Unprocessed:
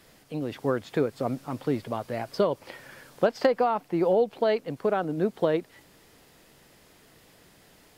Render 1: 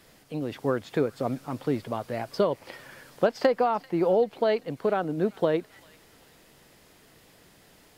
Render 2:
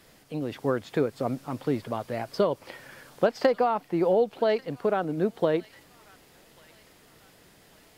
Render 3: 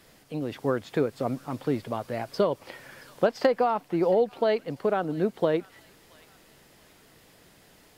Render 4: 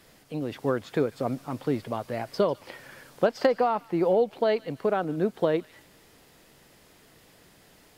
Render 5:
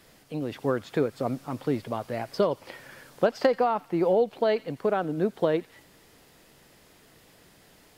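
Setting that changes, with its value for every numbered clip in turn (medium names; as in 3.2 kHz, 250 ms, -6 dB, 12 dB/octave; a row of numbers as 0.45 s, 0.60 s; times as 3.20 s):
feedback echo behind a high-pass, time: 390 ms, 1141 ms, 676 ms, 147 ms, 86 ms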